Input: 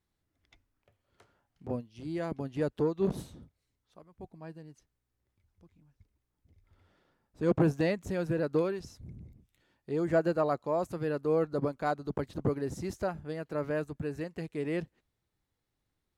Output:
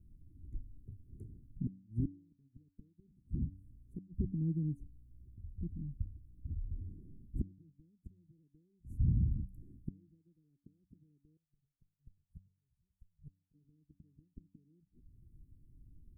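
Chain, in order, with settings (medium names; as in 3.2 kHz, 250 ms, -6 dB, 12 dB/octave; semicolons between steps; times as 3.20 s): compression 2:1, threshold -54 dBFS, peak gain reduction 18 dB; inverted gate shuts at -42 dBFS, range -38 dB; inverse Chebyshev band-stop 580–5400 Hz, stop band 40 dB; tilt EQ -3.5 dB/octave; de-hum 94.86 Hz, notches 3; 11.37–13.54 s: amplifier tone stack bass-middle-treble 10-0-10; trim +12 dB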